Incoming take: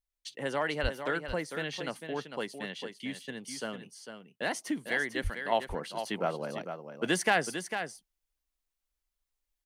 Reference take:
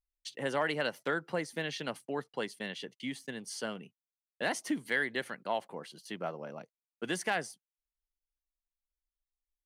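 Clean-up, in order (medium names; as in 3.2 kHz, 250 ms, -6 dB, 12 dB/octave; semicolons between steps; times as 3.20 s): 0.82–0.94 s: high-pass 140 Hz 24 dB/octave; 5.23–5.35 s: high-pass 140 Hz 24 dB/octave; inverse comb 450 ms -8.5 dB; 5.52 s: gain correction -6 dB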